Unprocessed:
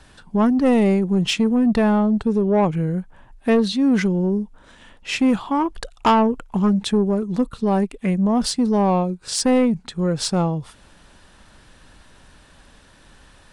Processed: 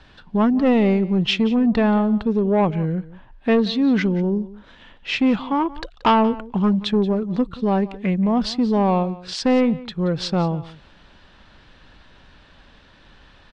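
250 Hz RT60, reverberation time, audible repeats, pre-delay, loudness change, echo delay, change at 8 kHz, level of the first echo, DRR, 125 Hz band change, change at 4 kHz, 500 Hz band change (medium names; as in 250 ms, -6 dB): no reverb, no reverb, 1, no reverb, -0.5 dB, 179 ms, under -10 dB, -18.5 dB, no reverb, -0.5 dB, 0.0 dB, -0.5 dB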